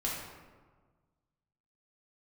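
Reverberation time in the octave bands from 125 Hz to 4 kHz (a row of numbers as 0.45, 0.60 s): 2.0, 1.7, 1.5, 1.4, 1.1, 0.75 s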